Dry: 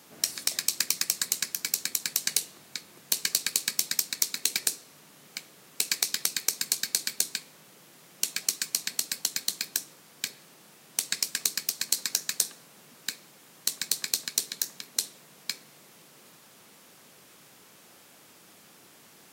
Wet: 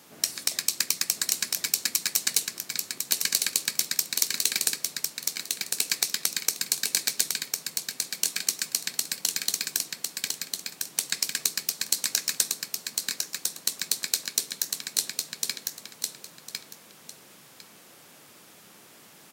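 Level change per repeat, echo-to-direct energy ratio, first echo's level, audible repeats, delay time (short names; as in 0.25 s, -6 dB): -14.0 dB, -4.0 dB, -4.0 dB, 2, 1.053 s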